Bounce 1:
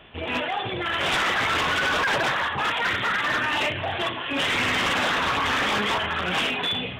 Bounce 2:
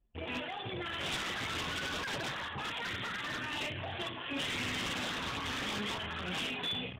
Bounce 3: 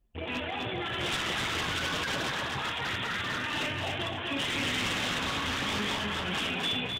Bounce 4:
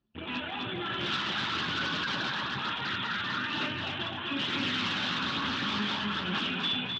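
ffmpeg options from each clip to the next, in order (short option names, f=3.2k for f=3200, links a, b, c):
-filter_complex "[0:a]anlmdn=10,acrossover=split=350|3000[a][b][c];[b]acompressor=threshold=-33dB:ratio=4[d];[a][d][c]amix=inputs=3:normalize=0,volume=-8dB"
-af "aecho=1:1:256|512|768|1024:0.668|0.174|0.0452|0.0117,volume=4dB"
-af "aphaser=in_gain=1:out_gain=1:delay=1.4:decay=0.21:speed=1.1:type=triangular,highpass=140,equalizer=f=210:t=q:w=4:g=4,equalizer=f=480:t=q:w=4:g=-8,equalizer=f=700:t=q:w=4:g=-7,equalizer=f=1.4k:t=q:w=4:g=4,equalizer=f=2.1k:t=q:w=4:g=-6,equalizer=f=4.1k:t=q:w=4:g=4,lowpass=f=4.9k:w=0.5412,lowpass=f=4.9k:w=1.3066"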